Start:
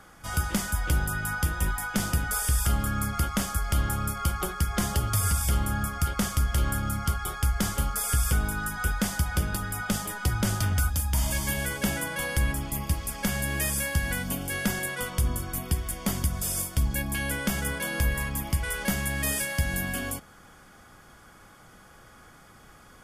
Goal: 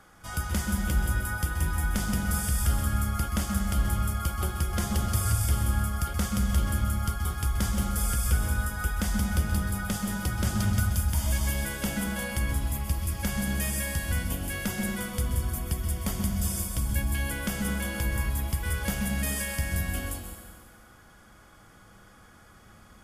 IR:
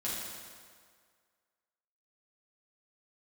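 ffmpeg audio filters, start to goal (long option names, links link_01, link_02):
-filter_complex "[0:a]asplit=2[link_01][link_02];[1:a]atrim=start_sample=2205,lowshelf=frequency=150:gain=9,adelay=126[link_03];[link_02][link_03]afir=irnorm=-1:irlink=0,volume=-8.5dB[link_04];[link_01][link_04]amix=inputs=2:normalize=0,volume=-4dB"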